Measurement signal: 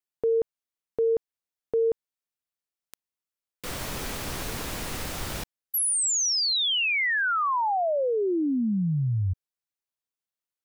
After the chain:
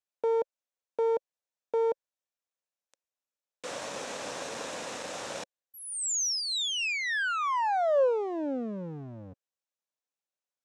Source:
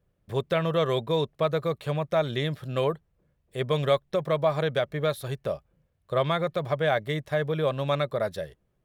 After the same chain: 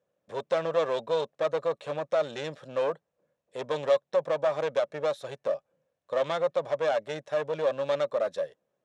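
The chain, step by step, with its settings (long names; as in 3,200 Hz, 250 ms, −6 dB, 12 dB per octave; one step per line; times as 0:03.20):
asymmetric clip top −29.5 dBFS
loudspeaker in its box 330–7,600 Hz, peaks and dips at 370 Hz −6 dB, 540 Hz +7 dB, 1,300 Hz −3 dB, 2,100 Hz −5 dB, 3,100 Hz −4 dB, 4,600 Hz −6 dB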